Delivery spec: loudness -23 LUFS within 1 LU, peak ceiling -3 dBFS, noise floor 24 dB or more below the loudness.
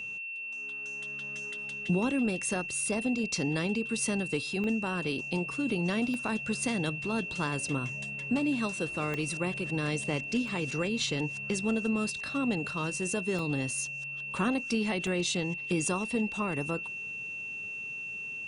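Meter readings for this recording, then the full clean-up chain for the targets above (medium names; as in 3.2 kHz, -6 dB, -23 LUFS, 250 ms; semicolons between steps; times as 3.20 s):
dropouts 7; longest dropout 1.1 ms; steady tone 2.7 kHz; tone level -36 dBFS; loudness -31.5 LUFS; peak level -16.0 dBFS; loudness target -23.0 LUFS
-> interpolate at 4.64/6.14/9.14/10.48/13.39/14.38/15.07 s, 1.1 ms; band-stop 2.7 kHz, Q 30; trim +8.5 dB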